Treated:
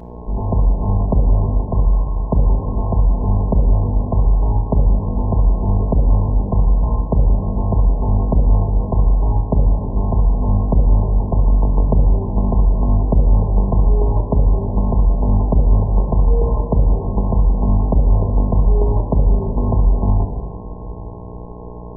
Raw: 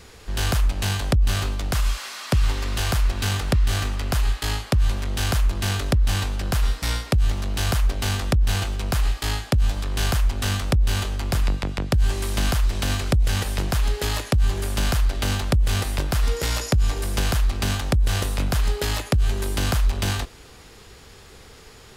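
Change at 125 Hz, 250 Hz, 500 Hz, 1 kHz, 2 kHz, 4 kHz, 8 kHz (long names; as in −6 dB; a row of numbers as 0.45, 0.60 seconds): +6.5 dB, +8.5 dB, +7.0 dB, +4.0 dB, below −40 dB, below −40 dB, below −40 dB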